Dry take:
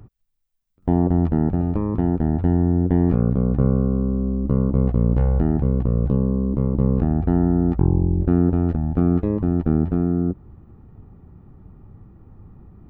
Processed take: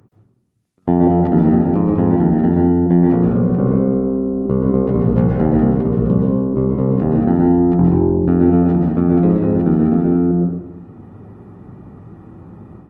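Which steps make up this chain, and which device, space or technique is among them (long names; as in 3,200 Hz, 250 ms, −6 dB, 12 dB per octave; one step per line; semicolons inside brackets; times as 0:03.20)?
far-field microphone of a smart speaker (convolution reverb RT60 0.75 s, pre-delay 118 ms, DRR −1 dB; high-pass filter 160 Hz 12 dB per octave; automatic gain control gain up to 11 dB; level −1 dB; Opus 24 kbit/s 48,000 Hz)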